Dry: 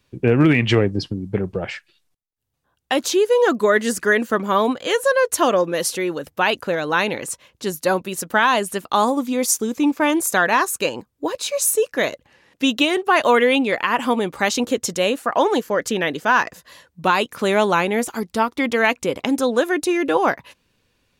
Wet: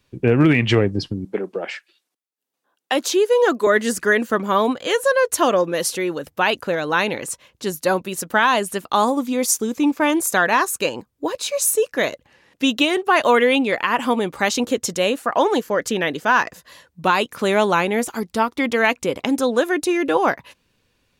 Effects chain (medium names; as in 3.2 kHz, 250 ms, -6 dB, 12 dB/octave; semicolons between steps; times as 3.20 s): 1.25–3.67 s: high-pass 250 Hz 24 dB/octave